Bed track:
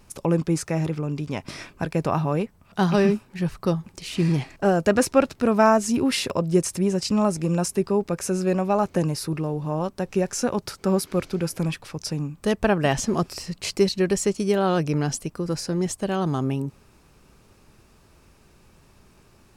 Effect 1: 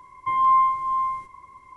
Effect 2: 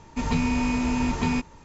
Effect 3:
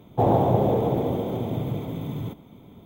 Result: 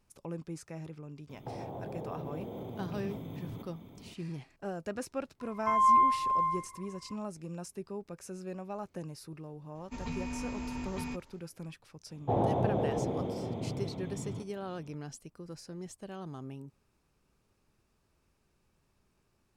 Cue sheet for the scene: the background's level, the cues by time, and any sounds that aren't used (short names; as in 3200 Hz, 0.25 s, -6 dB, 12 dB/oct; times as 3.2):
bed track -18.5 dB
1.29 add 3 -4 dB + compressor 16:1, threshold -33 dBFS
5.4 add 1 -5 dB
9.75 add 2 -14 dB
12.1 add 3 -9 dB + LPF 5700 Hz